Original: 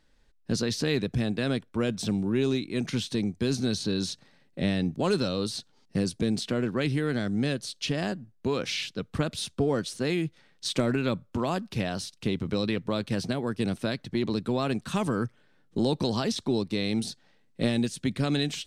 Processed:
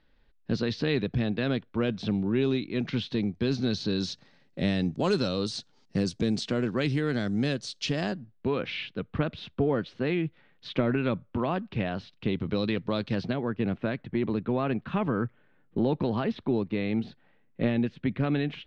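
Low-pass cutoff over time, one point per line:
low-pass 24 dB/octave
3.28 s 4 kHz
4.60 s 7 kHz
7.98 s 7 kHz
8.53 s 3.1 kHz
12.03 s 3.1 kHz
13.02 s 5 kHz
13.52 s 2.7 kHz

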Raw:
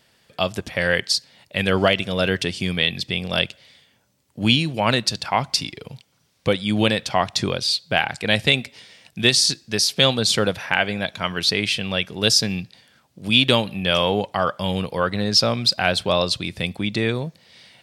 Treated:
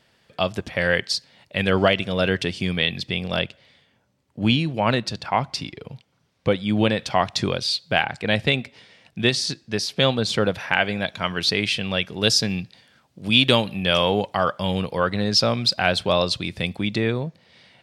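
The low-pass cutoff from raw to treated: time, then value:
low-pass 6 dB/octave
3.9 kHz
from 3.36 s 2 kHz
from 6.99 s 5.1 kHz
from 8.03 s 2.2 kHz
from 10.54 s 5.8 kHz
from 13.37 s 9.8 kHz
from 14.52 s 5.9 kHz
from 16.98 s 2.3 kHz

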